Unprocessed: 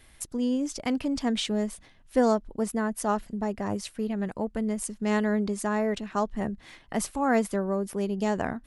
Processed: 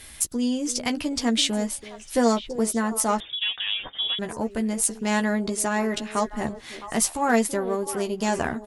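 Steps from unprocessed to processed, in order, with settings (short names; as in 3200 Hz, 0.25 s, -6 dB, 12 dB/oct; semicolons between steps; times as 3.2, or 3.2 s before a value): added harmonics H 4 -29 dB, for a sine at -11 dBFS; in parallel at +1 dB: compressor, threshold -50 dBFS, peak gain reduction 29 dB; on the sum: high shelf 2600 Hz +10.5 dB; doubler 13 ms -6 dB; on a send: delay with a stepping band-pass 0.331 s, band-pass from 390 Hz, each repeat 1.4 oct, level -9 dB; 3.2–4.19 on the sum: inverted band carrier 3600 Hz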